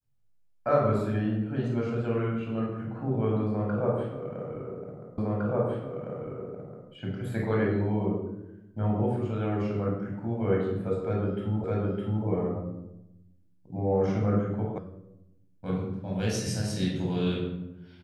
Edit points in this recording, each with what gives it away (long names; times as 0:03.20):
0:05.18: the same again, the last 1.71 s
0:11.64: the same again, the last 0.61 s
0:14.78: cut off before it has died away